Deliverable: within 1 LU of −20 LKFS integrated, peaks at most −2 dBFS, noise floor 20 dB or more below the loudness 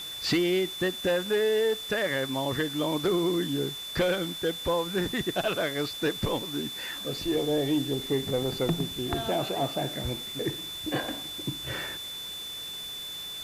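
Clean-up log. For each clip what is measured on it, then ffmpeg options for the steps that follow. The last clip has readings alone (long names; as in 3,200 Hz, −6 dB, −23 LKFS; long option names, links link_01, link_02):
interfering tone 3,500 Hz; level of the tone −36 dBFS; background noise floor −38 dBFS; target noise floor −49 dBFS; integrated loudness −29.0 LKFS; sample peak −16.0 dBFS; target loudness −20.0 LKFS
→ -af "bandreject=frequency=3500:width=30"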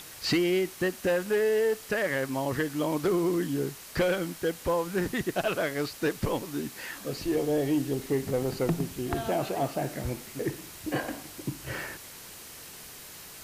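interfering tone none found; background noise floor −46 dBFS; target noise floor −50 dBFS
→ -af "afftdn=noise_reduction=6:noise_floor=-46"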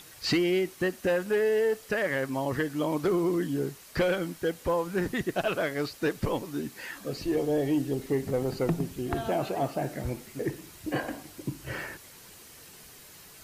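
background noise floor −51 dBFS; integrated loudness −29.5 LKFS; sample peak −16.5 dBFS; target loudness −20.0 LKFS
→ -af "volume=9.5dB"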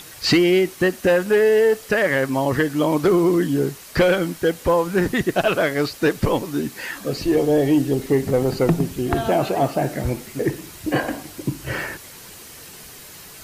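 integrated loudness −20.0 LKFS; sample peak −7.0 dBFS; background noise floor −41 dBFS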